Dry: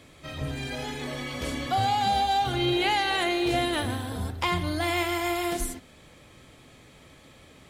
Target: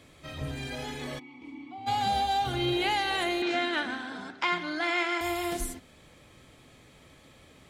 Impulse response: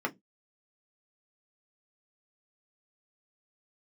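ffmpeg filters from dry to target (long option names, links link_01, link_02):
-filter_complex "[0:a]asplit=3[link_01][link_02][link_03];[link_01]afade=type=out:start_time=1.18:duration=0.02[link_04];[link_02]asplit=3[link_05][link_06][link_07];[link_05]bandpass=frequency=300:width_type=q:width=8,volume=0dB[link_08];[link_06]bandpass=frequency=870:width_type=q:width=8,volume=-6dB[link_09];[link_07]bandpass=frequency=2240:width_type=q:width=8,volume=-9dB[link_10];[link_08][link_09][link_10]amix=inputs=3:normalize=0,afade=type=in:start_time=1.18:duration=0.02,afade=type=out:start_time=1.86:duration=0.02[link_11];[link_03]afade=type=in:start_time=1.86:duration=0.02[link_12];[link_04][link_11][link_12]amix=inputs=3:normalize=0,asettb=1/sr,asplit=3[link_13][link_14][link_15];[link_13]atrim=end=3.424[link_16];[link_14]atrim=start=3.42:end=5.21,asetpts=PTS-STARTPTS,afade=type=in:duration=0.004:curve=qsin,afade=type=out:start_time=1.786:duration=0.004:curve=qsin,highpass=frequency=220:width=0.5412,highpass=frequency=220:width=1.3066,equalizer=frequency=490:width_type=q:width=4:gain=-8,equalizer=frequency=1500:width_type=q:width=4:gain=10,equalizer=frequency=2200:width_type=q:width=4:gain=4,lowpass=frequency=6600:width=0.5412,lowpass=frequency=6600:width=1.3066[link_17];[link_15]atrim=start=5.206[link_18];[link_16][link_17]acrossfade=duration=0.004:curve1=hsin:curve2=qsin[link_19];[link_19][link_18]acrossfade=duration=0.004:curve1=qsin:curve2=hsin,volume=-3dB"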